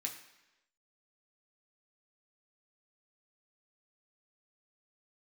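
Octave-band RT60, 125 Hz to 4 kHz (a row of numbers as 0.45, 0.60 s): 0.85, 0.95, 1.0, 1.0, 1.0, 1.0 s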